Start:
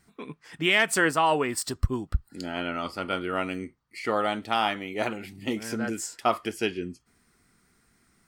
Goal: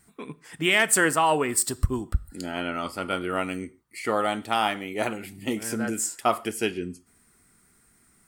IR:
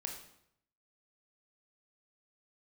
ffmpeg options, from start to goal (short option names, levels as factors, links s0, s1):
-filter_complex "[0:a]highshelf=f=6700:t=q:w=1.5:g=6.5,asplit=2[s0][s1];[1:a]atrim=start_sample=2205,afade=t=out:st=0.17:d=0.01,atrim=end_sample=7938,asetrate=36162,aresample=44100[s2];[s1][s2]afir=irnorm=-1:irlink=0,volume=0.2[s3];[s0][s3]amix=inputs=2:normalize=0"